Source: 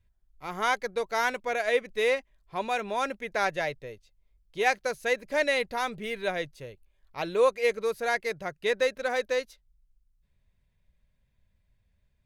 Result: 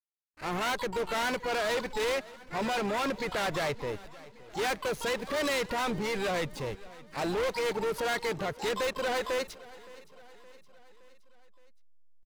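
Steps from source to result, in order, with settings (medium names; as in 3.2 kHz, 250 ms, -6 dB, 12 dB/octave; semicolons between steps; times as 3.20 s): transient shaper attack -5 dB, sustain +5 dB; in parallel at +3 dB: compression 8:1, threshold -40 dBFS, peak gain reduction 20.5 dB; on the sum: hysteresis with a dead band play -39.5 dBFS; harmony voices -7 st -17 dB, +12 st -10 dB; hard clipper -29 dBFS, distortion -6 dB; on a send: feedback delay 568 ms, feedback 56%, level -20 dB; on the sum: trim +1.5 dB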